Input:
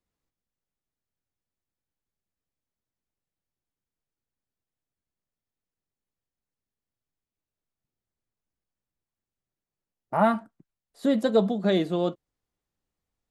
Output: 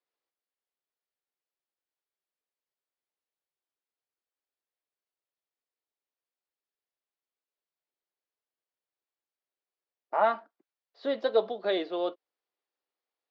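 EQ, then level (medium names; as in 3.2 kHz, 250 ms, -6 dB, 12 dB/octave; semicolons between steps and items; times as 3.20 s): high-pass 380 Hz 24 dB/octave; steep low-pass 5.1 kHz 48 dB/octave; -2.0 dB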